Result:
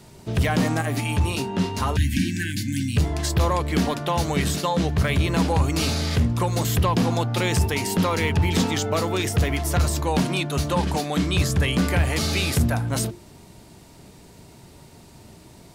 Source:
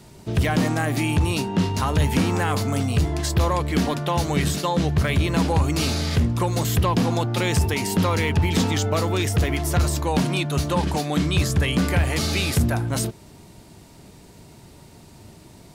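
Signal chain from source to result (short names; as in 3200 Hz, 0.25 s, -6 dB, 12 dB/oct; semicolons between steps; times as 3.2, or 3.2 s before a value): notches 50/100/150/200/250/300/350 Hz; 0.81–2.28 notch comb 160 Hz; 1.97–2.97 spectral delete 360–1500 Hz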